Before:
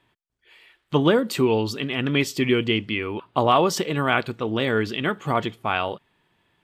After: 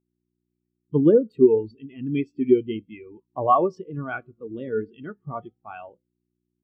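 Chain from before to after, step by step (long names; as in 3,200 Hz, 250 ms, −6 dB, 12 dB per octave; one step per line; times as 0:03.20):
flanger 0.33 Hz, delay 8.6 ms, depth 7.6 ms, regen −88%
hum with harmonics 60 Hz, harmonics 6, −47 dBFS 0 dB per octave
every bin expanded away from the loudest bin 2.5 to 1
level +5 dB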